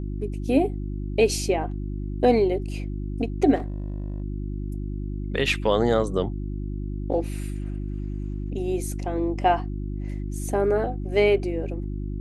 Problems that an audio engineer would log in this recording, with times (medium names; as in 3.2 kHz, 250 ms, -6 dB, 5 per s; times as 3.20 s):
hum 50 Hz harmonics 7 -30 dBFS
3.55–4.22 s: clipped -25.5 dBFS